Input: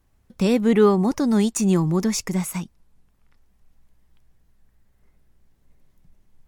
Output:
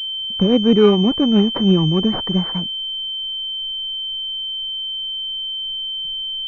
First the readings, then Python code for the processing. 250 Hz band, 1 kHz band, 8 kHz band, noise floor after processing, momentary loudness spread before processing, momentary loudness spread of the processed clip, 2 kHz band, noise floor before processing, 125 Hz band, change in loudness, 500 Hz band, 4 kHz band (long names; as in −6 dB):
+4.0 dB, +0.5 dB, below −20 dB, −26 dBFS, 11 LU, 9 LU, −1.5 dB, −63 dBFS, +4.0 dB, +2.0 dB, +3.5 dB, +22.0 dB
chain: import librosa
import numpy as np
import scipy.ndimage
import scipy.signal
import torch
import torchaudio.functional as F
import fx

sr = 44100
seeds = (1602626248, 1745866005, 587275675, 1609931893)

y = fx.rotary_switch(x, sr, hz=7.0, then_hz=0.6, switch_at_s=2.27)
y = fx.pwm(y, sr, carrier_hz=3100.0)
y = y * librosa.db_to_amplitude(5.5)